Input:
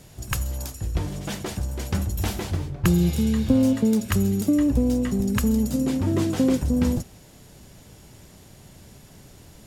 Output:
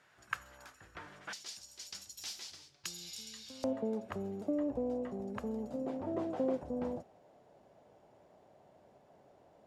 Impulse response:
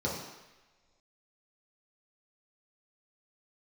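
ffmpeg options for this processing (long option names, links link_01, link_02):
-af "asetnsamples=nb_out_samples=441:pad=0,asendcmd='1.33 bandpass f 5100;3.64 bandpass f 660',bandpass=frequency=1500:width_type=q:width=2.5:csg=0,volume=-2dB"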